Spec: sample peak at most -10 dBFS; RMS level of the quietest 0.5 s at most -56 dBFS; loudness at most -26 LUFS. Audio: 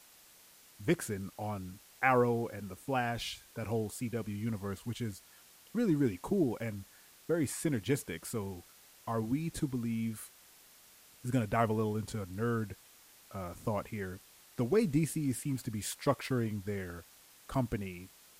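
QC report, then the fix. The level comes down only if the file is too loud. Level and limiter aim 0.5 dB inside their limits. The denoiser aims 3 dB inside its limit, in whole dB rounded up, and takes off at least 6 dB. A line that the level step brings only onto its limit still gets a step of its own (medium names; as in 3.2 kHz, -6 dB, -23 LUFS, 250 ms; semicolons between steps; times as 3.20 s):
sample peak -13.0 dBFS: pass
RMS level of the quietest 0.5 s -60 dBFS: pass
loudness -35.0 LUFS: pass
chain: none needed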